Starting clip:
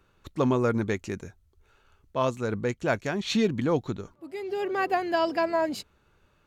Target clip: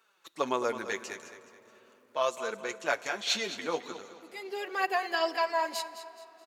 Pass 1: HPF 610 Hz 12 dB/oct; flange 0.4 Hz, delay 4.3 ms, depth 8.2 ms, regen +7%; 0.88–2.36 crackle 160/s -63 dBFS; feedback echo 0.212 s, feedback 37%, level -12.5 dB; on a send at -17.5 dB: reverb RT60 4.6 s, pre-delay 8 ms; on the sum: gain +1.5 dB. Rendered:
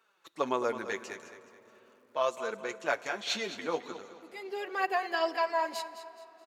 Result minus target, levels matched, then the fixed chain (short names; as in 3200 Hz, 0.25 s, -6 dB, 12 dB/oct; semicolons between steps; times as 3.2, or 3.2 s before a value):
8000 Hz band -4.0 dB
HPF 610 Hz 12 dB/oct; high shelf 2900 Hz +6 dB; flange 0.4 Hz, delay 4.3 ms, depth 8.2 ms, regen +7%; 0.88–2.36 crackle 160/s -63 dBFS; feedback echo 0.212 s, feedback 37%, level -12.5 dB; on a send at -17.5 dB: reverb RT60 4.6 s, pre-delay 8 ms; on the sum: gain +1.5 dB